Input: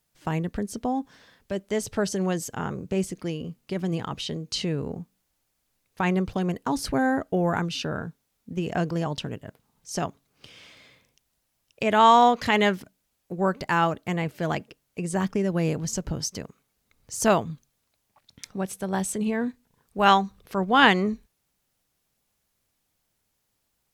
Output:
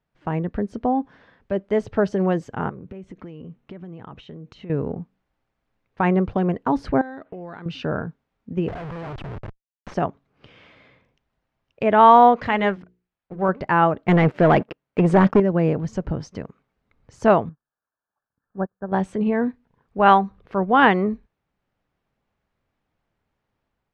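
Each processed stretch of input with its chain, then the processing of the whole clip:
2.69–4.70 s: compression 12:1, threshold -37 dBFS + low-pass 8.5 kHz + band-stop 4.8 kHz, Q 5.4
7.01–7.66 s: frequency weighting D + compression 8:1, threshold -36 dBFS + decimation joined by straight lines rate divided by 8×
8.68–9.94 s: FFT filter 110 Hz 0 dB, 250 Hz -17 dB, 390 Hz -4 dB, 3.6 kHz +1 dB, 5.7 kHz -1 dB, 12 kHz -8 dB + Schmitt trigger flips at -44 dBFS
12.47–13.49 s: companding laws mixed up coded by A + peaking EQ 380 Hz -4 dB 2.5 oct + hum notches 60/120/180/240/300/360/420/480 Hz
14.08–15.40 s: high-pass 110 Hz 6 dB/octave + waveshaping leveller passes 3
17.49–18.92 s: zero-crossing glitches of -31.5 dBFS + brick-wall FIR low-pass 1.8 kHz + upward expansion 2.5:1, over -45 dBFS
whole clip: low-pass 1.9 kHz 12 dB/octave; dynamic bell 570 Hz, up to +3 dB, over -32 dBFS, Q 0.72; level rider gain up to 3 dB; trim +1 dB

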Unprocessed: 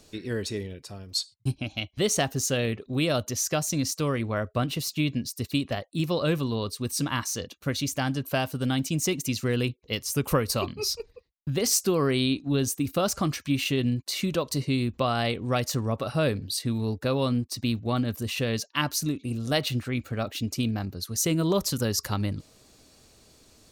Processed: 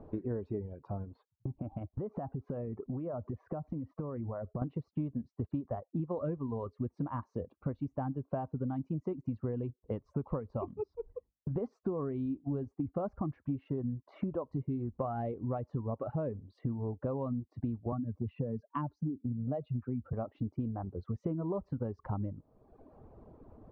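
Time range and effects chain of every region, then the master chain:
1.05–4.62 s: low-pass 2.2 kHz + compression, threshold -38 dBFS
10.83–11.56 s: hum notches 50/100/150/200/250/300 Hz + compression 2:1, threshold -39 dBFS
17.92–20.13 s: spectral contrast enhancement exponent 1.6 + three bands compressed up and down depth 70%
whole clip: Chebyshev low-pass 960 Hz, order 3; reverb removal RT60 0.92 s; compression 5:1, threshold -42 dBFS; trim +8 dB

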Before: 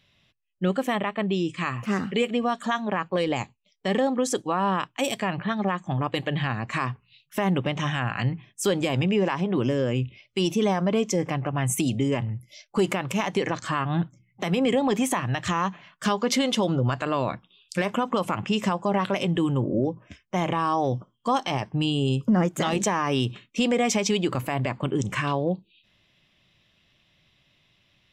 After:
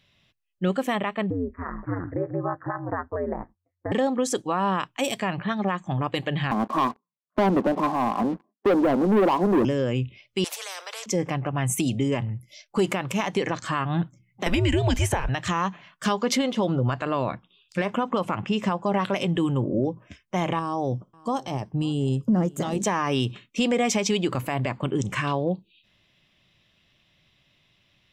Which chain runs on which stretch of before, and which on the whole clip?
1.30–3.92 s: de-esser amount 100% + steep low-pass 1.8 kHz 72 dB/octave + ring modulator 89 Hz
6.51–9.65 s: Chebyshev band-pass 210–1100 Hz, order 4 + waveshaping leveller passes 3
10.44–11.06 s: Chebyshev high-pass 460 Hz, order 8 + spectrum-flattening compressor 4:1
14.46–15.29 s: frequency shift -160 Hz + three bands compressed up and down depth 100%
16.37–18.86 s: de-esser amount 70% + low-pass 3.5 kHz 6 dB/octave
20.59–22.85 s: peaking EQ 2.2 kHz -11 dB 2.4 oct + delay 543 ms -23.5 dB
whole clip: none

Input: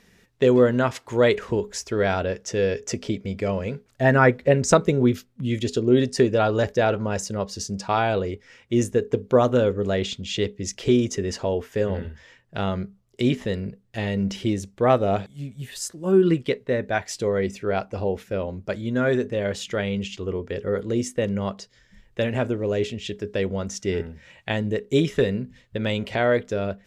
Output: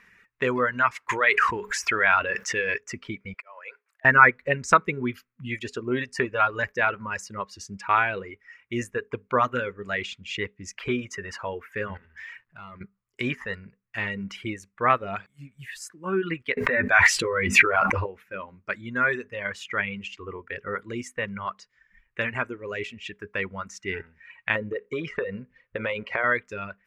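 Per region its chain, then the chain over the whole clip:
1.09–2.78 s: bass shelf 410 Hz -9.5 dB + level flattener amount 70%
3.34–4.05 s: high-pass 500 Hz 24 dB/octave + slow attack 427 ms
11.97–12.81 s: compression 2.5:1, threshold -48 dBFS + waveshaping leveller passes 2 + transient shaper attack -7 dB, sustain +2 dB
16.57–18.06 s: doubling 12 ms -4 dB + level flattener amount 100%
24.55–26.24 s: low-pass 4.6 kHz + peaking EQ 510 Hz +13.5 dB 0.69 oct + compression 5:1, threshold -17 dBFS
whole clip: reverb removal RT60 1.7 s; high-order bell 1.6 kHz +15.5 dB; trim -8.5 dB

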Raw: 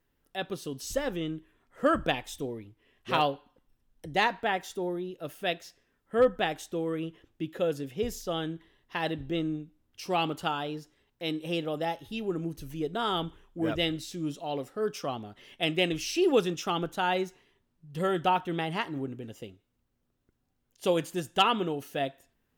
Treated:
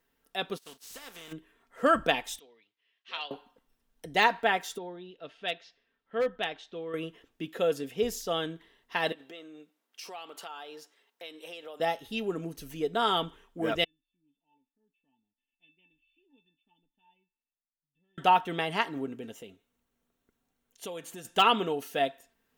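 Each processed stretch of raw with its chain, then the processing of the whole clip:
0.57–1.31 s: spectral contrast reduction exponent 0.45 + expander -33 dBFS + compression 4:1, threshold -48 dBFS
2.39–3.31 s: low-pass 4.4 kHz 24 dB/octave + differentiator
4.78–6.94 s: four-pole ladder low-pass 4.6 kHz, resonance 35% + hard clipper -23.5 dBFS
9.12–11.80 s: high-pass 450 Hz + compression 5:1, threshold -43 dBFS
13.84–18.18 s: cascade formant filter i + feedback comb 890 Hz, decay 0.22 s, mix 100%
19.32–21.25 s: band-stop 4.9 kHz, Q 7 + compression 2.5:1, threshold -43 dBFS
whole clip: de-esser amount 65%; bass shelf 220 Hz -11.5 dB; comb 4.4 ms, depth 36%; trim +3 dB

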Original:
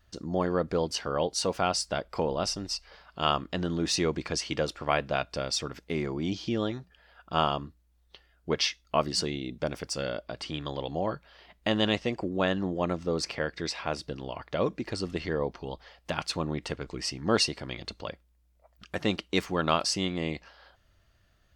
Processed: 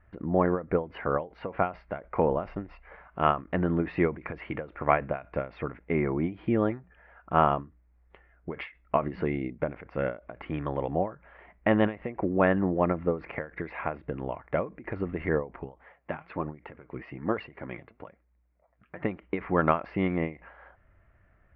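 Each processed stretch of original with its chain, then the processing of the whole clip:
15.64–19.03 s: high-pass 70 Hz + flange 1.1 Hz, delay 0.1 ms, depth 9 ms, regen +51%
whole clip: elliptic low-pass 2.2 kHz, stop band 70 dB; endings held to a fixed fall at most 190 dB/s; trim +5 dB

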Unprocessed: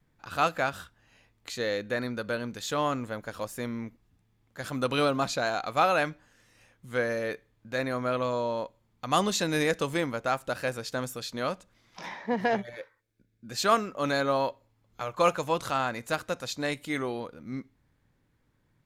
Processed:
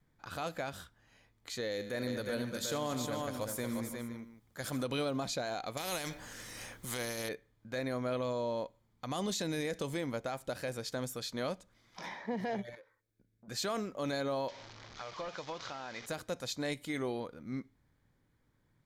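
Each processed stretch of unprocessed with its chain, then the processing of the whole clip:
1.71–4.83 s: treble shelf 6.9 kHz +9 dB + multi-tap echo 81/147/229/358/510 ms -14/-19/-13/-6/-17 dB
5.77–7.29 s: treble shelf 5.5 kHz +6.5 dB + spectrum-flattening compressor 2:1
12.75–13.48 s: peaking EQ 2.7 kHz -3.5 dB 2.5 oct + compression 4:1, threshold -50 dBFS + transformer saturation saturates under 670 Hz
14.48–16.06 s: one-bit delta coder 32 kbps, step -36.5 dBFS + bass shelf 480 Hz -11 dB + compression, threshold -32 dBFS
whole clip: band-stop 2.7 kHz, Q 11; dynamic bell 1.3 kHz, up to -7 dB, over -43 dBFS, Q 1.5; peak limiter -23.5 dBFS; trim -3 dB

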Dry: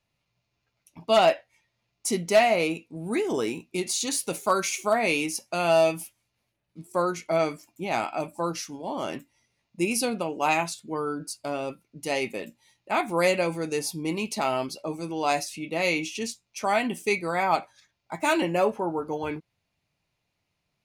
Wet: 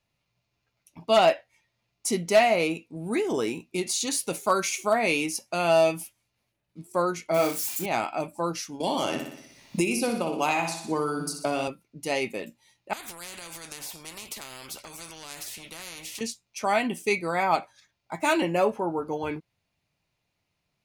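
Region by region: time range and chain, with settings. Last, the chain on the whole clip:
7.34–7.86 s: zero-crossing glitches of -25.5 dBFS + flutter echo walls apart 4.9 m, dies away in 0.24 s
8.80–11.68 s: flutter echo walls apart 10.3 m, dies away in 0.51 s + three bands compressed up and down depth 100%
12.93–16.21 s: compression, threshold -31 dBFS + spectrum-flattening compressor 4:1
whole clip: none

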